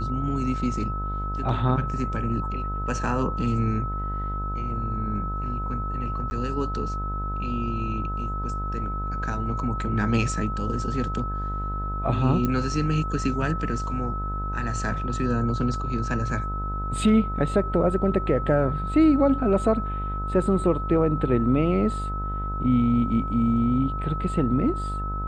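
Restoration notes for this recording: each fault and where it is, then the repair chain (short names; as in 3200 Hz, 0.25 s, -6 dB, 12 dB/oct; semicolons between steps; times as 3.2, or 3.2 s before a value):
buzz 50 Hz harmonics 30 -30 dBFS
tone 1300 Hz -31 dBFS
6.3–6.31 gap 10 ms
12.45 pop -13 dBFS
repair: de-click; notch 1300 Hz, Q 30; de-hum 50 Hz, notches 30; interpolate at 6.3, 10 ms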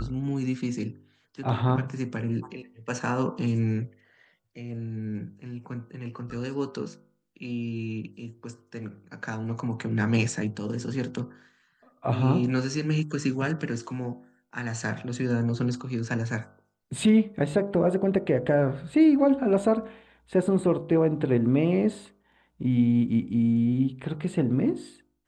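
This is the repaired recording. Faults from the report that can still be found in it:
none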